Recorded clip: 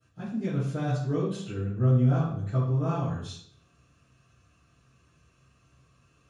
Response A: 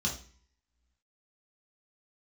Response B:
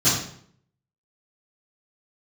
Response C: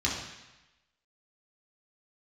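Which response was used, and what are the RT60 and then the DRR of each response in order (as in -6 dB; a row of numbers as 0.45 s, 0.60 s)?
B; 0.45 s, 0.60 s, 1.0 s; -3.0 dB, -17.0 dB, -5.5 dB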